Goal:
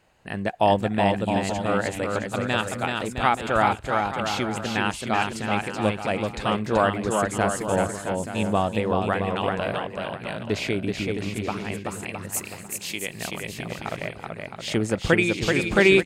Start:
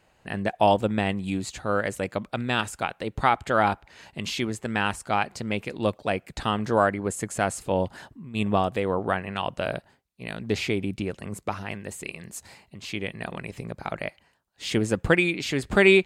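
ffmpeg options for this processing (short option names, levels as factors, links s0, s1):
-filter_complex "[0:a]asettb=1/sr,asplit=3[s0][s1][s2];[s0]atrim=end=12.314[s3];[s1]atrim=start=12.31:end=13.1,asetpts=PTS-STARTPTS,afade=t=in:d=0.004:c=qsin,afade=t=out:st=0.786:d=0.004:c=qsin,aemphasis=mode=production:type=bsi[s4];[s2]atrim=start=13.096[s5];[s3][s4]acrossfade=d=0.004:c1=hsin:c2=qsin[s6];[s6][s5]acrossfade=d=0.004:c1=qsin:c2=hsin,aecho=1:1:380|665|878.8|1039|1159:0.631|0.398|0.251|0.158|0.1"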